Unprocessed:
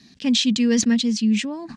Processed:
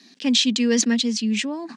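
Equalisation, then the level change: high-pass 250 Hz 24 dB/octave; +2.0 dB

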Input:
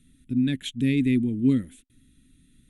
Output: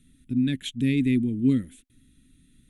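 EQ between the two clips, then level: dynamic bell 810 Hz, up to -4 dB, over -42 dBFS, Q 1; 0.0 dB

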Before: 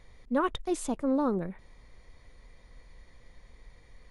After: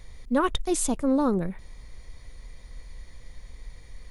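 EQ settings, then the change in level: bass shelf 140 Hz +9 dB; treble shelf 3.8 kHz +11.5 dB; +2.5 dB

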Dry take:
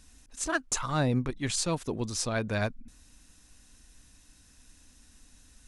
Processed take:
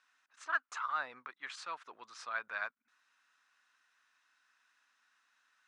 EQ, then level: ladder band-pass 1.5 kHz, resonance 50%; +5.5 dB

